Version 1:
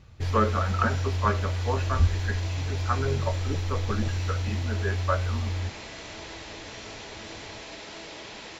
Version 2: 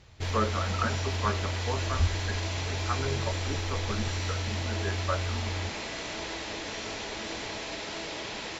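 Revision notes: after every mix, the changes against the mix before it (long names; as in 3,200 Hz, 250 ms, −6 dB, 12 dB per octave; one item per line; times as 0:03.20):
speech −4.5 dB
background +4.5 dB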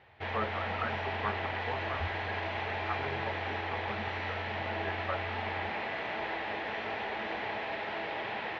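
speech −7.0 dB
master: add loudspeaker in its box 100–2,900 Hz, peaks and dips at 160 Hz −5 dB, 290 Hz −7 dB, 790 Hz +8 dB, 1,800 Hz +5 dB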